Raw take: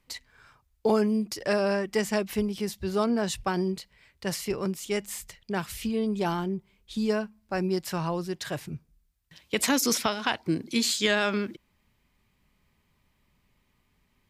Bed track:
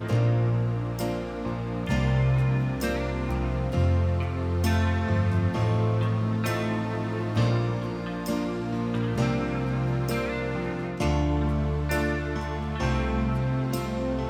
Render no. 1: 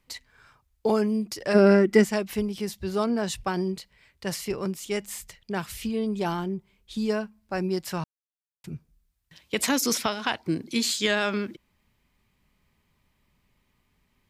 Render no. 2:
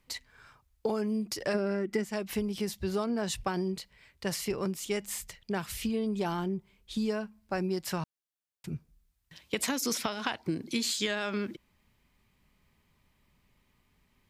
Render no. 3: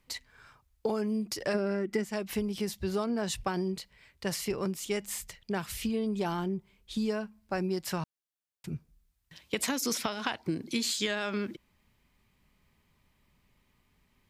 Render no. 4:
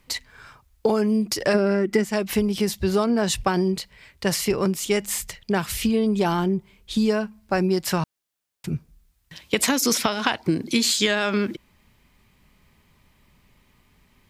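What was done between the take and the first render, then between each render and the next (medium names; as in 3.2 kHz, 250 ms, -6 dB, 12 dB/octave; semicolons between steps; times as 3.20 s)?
1.54–2.03 s: small resonant body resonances 230/340/1400/2000 Hz, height 14 dB -> 11 dB, ringing for 25 ms; 8.04–8.64 s: mute
compression 8:1, threshold -27 dBFS, peak gain reduction 14.5 dB
no audible change
trim +10 dB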